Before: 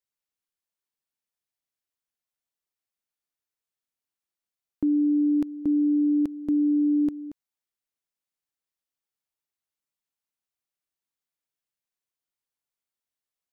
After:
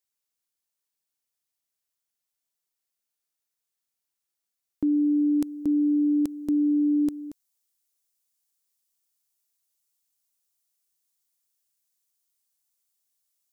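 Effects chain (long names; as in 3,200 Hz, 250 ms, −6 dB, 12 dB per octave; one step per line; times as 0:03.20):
bass and treble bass −1 dB, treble +7 dB, from 0:04.92 treble +15 dB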